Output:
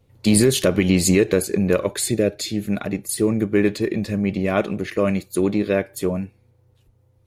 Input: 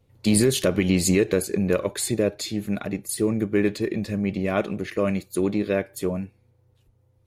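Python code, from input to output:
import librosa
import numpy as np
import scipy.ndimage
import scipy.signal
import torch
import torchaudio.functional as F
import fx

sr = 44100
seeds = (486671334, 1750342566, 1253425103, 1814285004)

y = fx.peak_eq(x, sr, hz=990.0, db=-13.0, octaves=0.43, at=(1.99, 2.7))
y = F.gain(torch.from_numpy(y), 3.5).numpy()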